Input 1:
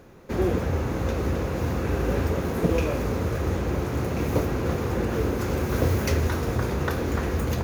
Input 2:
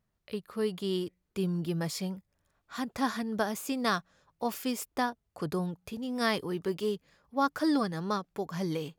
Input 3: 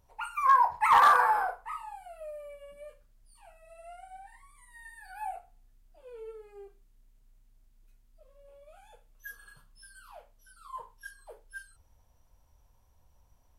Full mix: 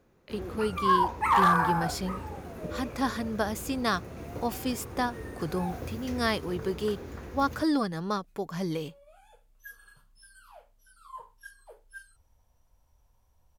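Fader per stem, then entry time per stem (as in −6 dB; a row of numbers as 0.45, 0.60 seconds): −15.5, +1.0, −2.0 decibels; 0.00, 0.00, 0.40 seconds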